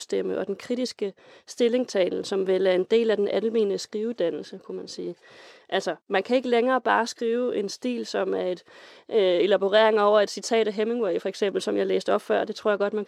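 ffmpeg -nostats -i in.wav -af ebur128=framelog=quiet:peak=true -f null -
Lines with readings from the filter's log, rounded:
Integrated loudness:
  I:         -24.5 LUFS
  Threshold: -35.0 LUFS
Loudness range:
  LRA:         4.3 LU
  Threshold: -44.8 LUFS
  LRA low:   -27.2 LUFS
  LRA high:  -22.9 LUFS
True peak:
  Peak:       -6.9 dBFS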